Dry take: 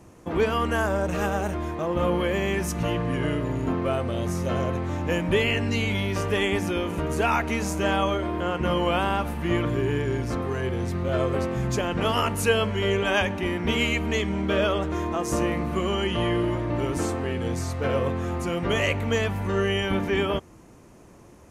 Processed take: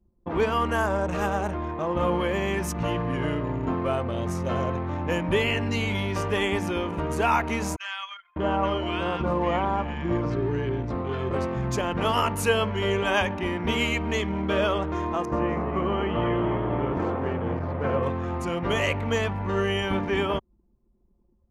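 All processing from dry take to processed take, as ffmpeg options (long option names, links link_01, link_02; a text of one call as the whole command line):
ffmpeg -i in.wav -filter_complex "[0:a]asettb=1/sr,asplit=3[link_01][link_02][link_03];[link_01]atrim=end=7.764[link_04];[link_02]atrim=start=7.76:end=11.31,asetpts=PTS-STARTPTS,afade=type=in:duration=0.004:curve=qsin,afade=type=out:start_time=3.546:duration=0.004:curve=qsin,lowpass=5600,acrossover=split=1400[link_05][link_06];[link_05]adelay=600[link_07];[link_07][link_06]amix=inputs=2:normalize=0,atrim=end_sample=156555[link_08];[link_03]atrim=start=11.306[link_09];[link_04][link_08]acrossfade=duration=0.004:curve1=hsin:curve2=qsin[link_10];[link_10][link_09]acrossfade=duration=0.004:curve1=qsin:curve2=hsin,asettb=1/sr,asplit=3[link_11][link_12][link_13];[link_11]atrim=end=15.254[link_14];[link_12]atrim=start=15.25:end=18.03,asetpts=PTS-STARTPTS,afade=type=in:duration=0.004:curve=qsin,afade=type=out:start_time=2.776:duration=0.004:curve=qsin,lowpass=2100,asplit=7[link_15][link_16][link_17][link_18][link_19][link_20][link_21];[link_16]adelay=239,afreqshift=76,volume=-8dB[link_22];[link_17]adelay=478,afreqshift=152,volume=-13.4dB[link_23];[link_18]adelay=717,afreqshift=228,volume=-18.7dB[link_24];[link_19]adelay=956,afreqshift=304,volume=-24.1dB[link_25];[link_20]adelay=1195,afreqshift=380,volume=-29.4dB[link_26];[link_21]adelay=1434,afreqshift=456,volume=-34.8dB[link_27];[link_15][link_22][link_23][link_24][link_25][link_26][link_27]amix=inputs=7:normalize=0,atrim=end_sample=122598[link_28];[link_13]atrim=start=18.026[link_29];[link_14][link_28]acrossfade=duration=0.004:curve1=hsin:curve2=qsin[link_30];[link_30][link_29]acrossfade=duration=0.004:curve1=qsin:curve2=hsin,anlmdn=2.51,equalizer=frequency=970:width=2.2:gain=5,volume=-1.5dB" out.wav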